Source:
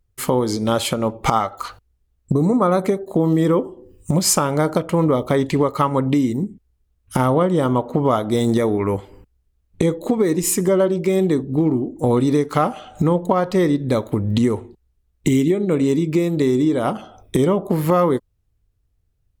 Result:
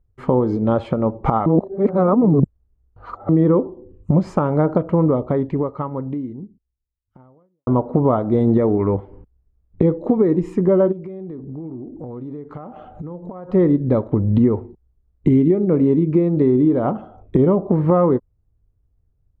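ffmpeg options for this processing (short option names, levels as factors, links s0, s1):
-filter_complex "[0:a]asplit=3[s0][s1][s2];[s0]afade=t=out:st=10.91:d=0.02[s3];[s1]acompressor=threshold=0.0251:ratio=6:attack=3.2:release=140:knee=1:detection=peak,afade=t=in:st=10.91:d=0.02,afade=t=out:st=13.48:d=0.02[s4];[s2]afade=t=in:st=13.48:d=0.02[s5];[s3][s4][s5]amix=inputs=3:normalize=0,asplit=4[s6][s7][s8][s9];[s6]atrim=end=1.462[s10];[s7]atrim=start=1.458:end=3.292,asetpts=PTS-STARTPTS,areverse[s11];[s8]atrim=start=3.288:end=7.67,asetpts=PTS-STARTPTS,afade=t=out:st=1.572:d=2.81:c=qua[s12];[s9]atrim=start=7.67,asetpts=PTS-STARTPTS,afade=t=in:d=0.004:c=hsin[s13];[s10][s11]acrossfade=d=0.004:c1=hsin:c2=hsin[s14];[s12][s13]concat=n=2:v=0:a=1[s15];[s14][s15]acrossfade=d=0.004:c1=hsin:c2=hsin,lowpass=1100,lowshelf=f=380:g=3.5"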